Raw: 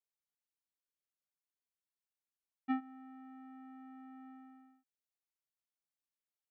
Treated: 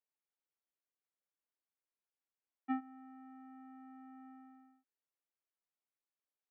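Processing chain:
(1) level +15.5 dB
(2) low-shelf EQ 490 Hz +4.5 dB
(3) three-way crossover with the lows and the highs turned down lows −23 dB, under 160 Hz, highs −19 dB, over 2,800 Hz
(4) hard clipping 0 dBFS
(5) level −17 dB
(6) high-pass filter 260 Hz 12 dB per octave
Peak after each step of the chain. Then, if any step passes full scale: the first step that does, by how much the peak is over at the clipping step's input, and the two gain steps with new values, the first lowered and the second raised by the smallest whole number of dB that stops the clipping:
−11.5, −10.0, −6.0, −6.0, −23.0, −27.5 dBFS
no step passes full scale

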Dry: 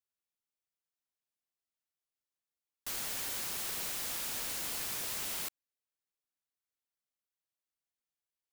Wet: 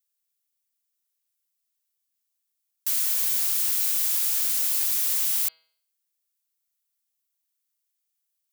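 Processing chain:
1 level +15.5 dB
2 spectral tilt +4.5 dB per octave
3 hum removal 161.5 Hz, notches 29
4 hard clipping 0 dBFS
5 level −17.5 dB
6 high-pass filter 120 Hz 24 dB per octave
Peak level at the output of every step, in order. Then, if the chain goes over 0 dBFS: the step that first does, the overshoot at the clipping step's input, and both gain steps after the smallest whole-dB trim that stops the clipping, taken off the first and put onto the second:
−9.5, +6.5, +6.5, 0.0, −17.5, −17.0 dBFS
step 2, 6.5 dB
step 1 +8.5 dB, step 5 −10.5 dB

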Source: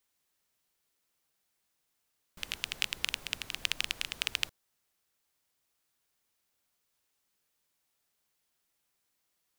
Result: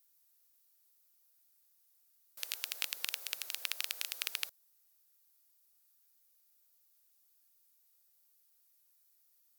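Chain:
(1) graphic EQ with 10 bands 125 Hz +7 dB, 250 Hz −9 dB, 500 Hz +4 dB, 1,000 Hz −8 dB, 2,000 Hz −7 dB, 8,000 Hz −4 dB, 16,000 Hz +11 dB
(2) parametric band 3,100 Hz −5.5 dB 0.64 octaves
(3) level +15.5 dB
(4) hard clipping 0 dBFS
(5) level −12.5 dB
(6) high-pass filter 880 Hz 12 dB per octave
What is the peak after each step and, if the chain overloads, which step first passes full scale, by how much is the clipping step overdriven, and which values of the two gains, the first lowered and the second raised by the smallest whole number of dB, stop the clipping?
−6.5, −7.5, +8.0, 0.0, −12.5, −12.0 dBFS
step 3, 8.0 dB
step 3 +7.5 dB, step 5 −4.5 dB

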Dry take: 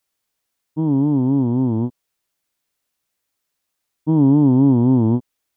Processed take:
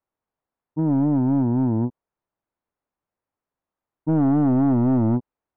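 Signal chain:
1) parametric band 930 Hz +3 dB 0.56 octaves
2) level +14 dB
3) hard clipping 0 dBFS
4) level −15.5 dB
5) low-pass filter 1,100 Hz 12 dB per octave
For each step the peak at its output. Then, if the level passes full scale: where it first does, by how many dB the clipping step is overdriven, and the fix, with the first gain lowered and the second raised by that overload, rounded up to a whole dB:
−6.0, +8.0, 0.0, −15.5, −15.0 dBFS
step 2, 8.0 dB
step 2 +6 dB, step 4 −7.5 dB

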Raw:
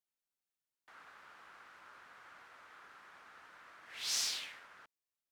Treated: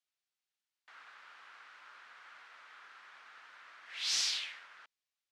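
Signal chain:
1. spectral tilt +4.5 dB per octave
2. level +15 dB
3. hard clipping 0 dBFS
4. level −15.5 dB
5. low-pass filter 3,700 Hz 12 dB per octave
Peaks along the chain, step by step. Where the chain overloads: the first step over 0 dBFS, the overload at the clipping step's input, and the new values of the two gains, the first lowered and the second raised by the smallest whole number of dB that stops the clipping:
−11.5, +3.5, 0.0, −15.5, −21.0 dBFS
step 2, 3.5 dB
step 2 +11 dB, step 4 −11.5 dB

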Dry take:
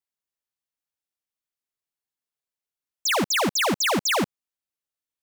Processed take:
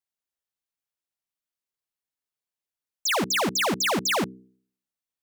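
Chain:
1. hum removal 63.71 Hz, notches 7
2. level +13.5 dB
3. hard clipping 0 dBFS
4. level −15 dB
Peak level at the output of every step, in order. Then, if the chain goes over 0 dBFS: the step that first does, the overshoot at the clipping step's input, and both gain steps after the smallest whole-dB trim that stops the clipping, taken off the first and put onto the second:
−18.5, −5.0, −5.0, −20.0 dBFS
no step passes full scale

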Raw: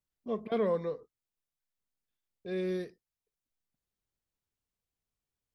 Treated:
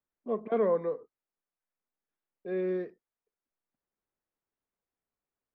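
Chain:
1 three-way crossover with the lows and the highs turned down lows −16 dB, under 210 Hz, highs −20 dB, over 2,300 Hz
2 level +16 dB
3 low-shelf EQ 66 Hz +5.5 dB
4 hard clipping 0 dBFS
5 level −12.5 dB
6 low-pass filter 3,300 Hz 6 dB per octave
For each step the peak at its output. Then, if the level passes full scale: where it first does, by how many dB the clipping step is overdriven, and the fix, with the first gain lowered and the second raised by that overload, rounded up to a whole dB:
−21.0, −5.0, −5.0, −5.0, −17.5, −17.5 dBFS
no step passes full scale

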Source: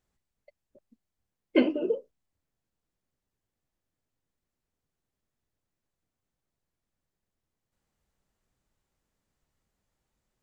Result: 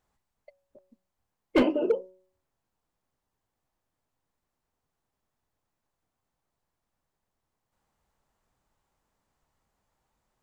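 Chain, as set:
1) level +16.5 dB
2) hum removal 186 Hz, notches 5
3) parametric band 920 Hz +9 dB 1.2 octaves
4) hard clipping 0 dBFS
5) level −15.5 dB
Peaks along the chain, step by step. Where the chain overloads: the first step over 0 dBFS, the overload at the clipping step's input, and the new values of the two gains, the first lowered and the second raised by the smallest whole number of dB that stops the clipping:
+8.0, +7.5, +10.0, 0.0, −15.5 dBFS
step 1, 10.0 dB
step 1 +6.5 dB, step 5 −5.5 dB

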